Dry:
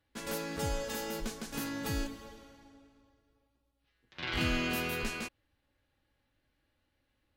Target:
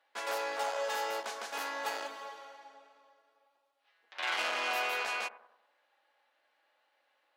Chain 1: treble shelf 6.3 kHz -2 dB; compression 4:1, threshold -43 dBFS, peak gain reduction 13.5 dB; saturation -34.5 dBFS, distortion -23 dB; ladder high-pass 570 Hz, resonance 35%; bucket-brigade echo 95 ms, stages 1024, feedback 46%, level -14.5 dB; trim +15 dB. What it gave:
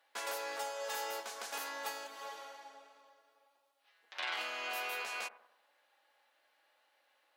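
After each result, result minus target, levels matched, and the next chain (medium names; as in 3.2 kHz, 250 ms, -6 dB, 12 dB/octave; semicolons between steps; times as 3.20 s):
compression: peak gain reduction +13.5 dB; 8 kHz band +5.0 dB
treble shelf 6.3 kHz -2 dB; saturation -34.5 dBFS, distortion -9 dB; ladder high-pass 570 Hz, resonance 35%; bucket-brigade echo 95 ms, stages 1024, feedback 46%, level -14.5 dB; trim +15 dB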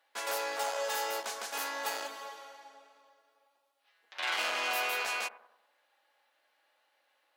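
8 kHz band +4.5 dB
treble shelf 6.3 kHz -13.5 dB; saturation -34.5 dBFS, distortion -10 dB; ladder high-pass 570 Hz, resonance 35%; bucket-brigade echo 95 ms, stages 1024, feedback 46%, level -14.5 dB; trim +15 dB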